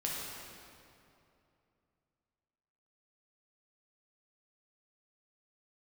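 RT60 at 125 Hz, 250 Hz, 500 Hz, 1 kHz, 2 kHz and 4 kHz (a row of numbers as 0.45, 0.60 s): 3.2, 3.0, 2.8, 2.6, 2.2, 1.9 s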